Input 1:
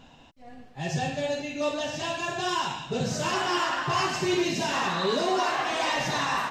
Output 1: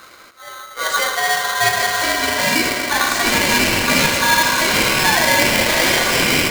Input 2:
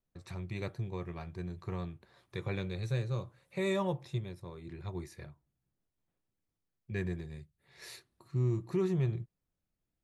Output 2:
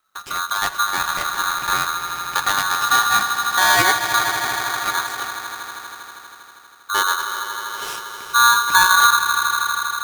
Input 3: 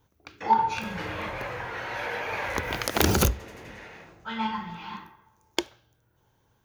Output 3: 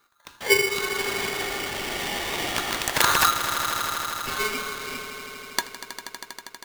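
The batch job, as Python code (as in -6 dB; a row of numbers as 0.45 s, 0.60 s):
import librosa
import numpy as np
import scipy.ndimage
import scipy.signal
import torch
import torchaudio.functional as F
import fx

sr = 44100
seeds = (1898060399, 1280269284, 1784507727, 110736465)

y = fx.echo_swell(x, sr, ms=80, loudest=5, wet_db=-13.5)
y = y * np.sign(np.sin(2.0 * np.pi * 1300.0 * np.arange(len(y)) / sr))
y = y * 10.0 ** (-3 / 20.0) / np.max(np.abs(y))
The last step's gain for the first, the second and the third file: +10.0 dB, +16.0 dB, +1.5 dB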